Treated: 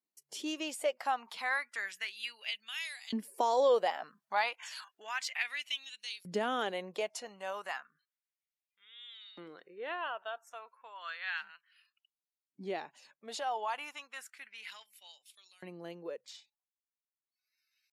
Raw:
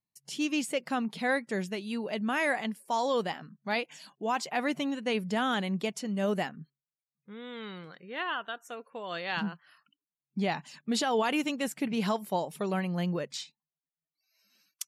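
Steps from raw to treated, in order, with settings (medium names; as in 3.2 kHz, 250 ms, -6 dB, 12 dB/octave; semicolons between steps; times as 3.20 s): Doppler pass-by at 3.39 s, 10 m/s, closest 14 m; compression 2.5:1, threshold -37 dBFS, peak gain reduction 8.5 dB; tempo 0.83×; LFO high-pass saw up 0.32 Hz 300–4600 Hz; trim +4.5 dB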